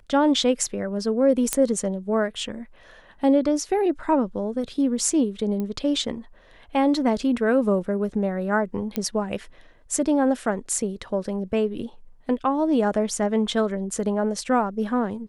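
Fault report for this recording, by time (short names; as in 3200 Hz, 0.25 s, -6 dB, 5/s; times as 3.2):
1.53 pop -5 dBFS
5.6 pop -18 dBFS
8.96 pop -11 dBFS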